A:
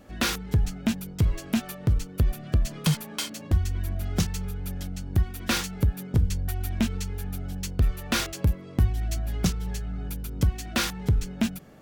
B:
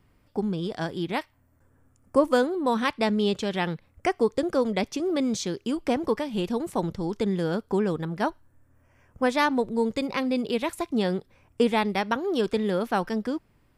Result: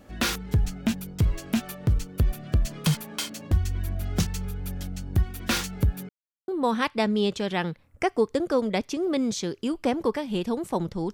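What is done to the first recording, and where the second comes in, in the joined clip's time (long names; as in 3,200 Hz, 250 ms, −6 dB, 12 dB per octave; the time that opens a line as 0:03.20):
A
0:06.09–0:06.48: silence
0:06.48: continue with B from 0:02.51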